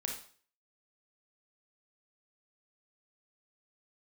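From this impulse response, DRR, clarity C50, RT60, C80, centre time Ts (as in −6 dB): 0.5 dB, 4.5 dB, 0.45 s, 10.0 dB, 29 ms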